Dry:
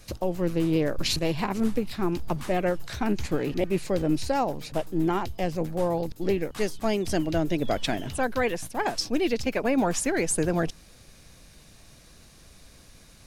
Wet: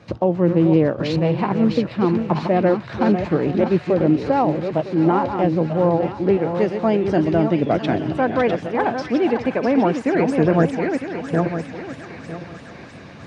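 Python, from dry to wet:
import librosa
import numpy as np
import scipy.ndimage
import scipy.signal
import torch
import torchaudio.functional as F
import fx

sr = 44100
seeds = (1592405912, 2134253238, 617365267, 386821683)

p1 = fx.reverse_delay_fb(x, sr, ms=478, feedback_pct=41, wet_db=-7.0)
p2 = scipy.signal.sosfilt(scipy.signal.butter(4, 100.0, 'highpass', fs=sr, output='sos'), p1)
p3 = fx.peak_eq(p2, sr, hz=1000.0, db=2.0, octaves=0.77)
p4 = fx.rider(p3, sr, range_db=10, speed_s=2.0)
p5 = fx.spacing_loss(p4, sr, db_at_10k=37)
p6 = p5 + fx.echo_wet_highpass(p5, sr, ms=652, feedback_pct=66, hz=1900.0, wet_db=-6.0, dry=0)
y = p6 * librosa.db_to_amplitude(9.0)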